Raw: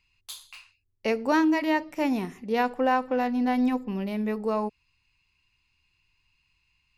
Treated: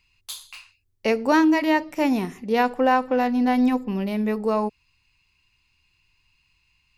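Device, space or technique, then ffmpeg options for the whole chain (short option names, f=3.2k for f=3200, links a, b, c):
exciter from parts: -filter_complex "[0:a]asplit=2[a][b];[b]highpass=3k,asoftclip=type=tanh:threshold=-39.5dB,volume=-13dB[c];[a][c]amix=inputs=2:normalize=0,volume=4.5dB"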